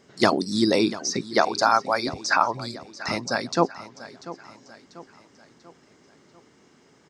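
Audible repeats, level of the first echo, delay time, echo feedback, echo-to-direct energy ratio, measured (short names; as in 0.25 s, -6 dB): 3, -16.0 dB, 0.691 s, 46%, -15.0 dB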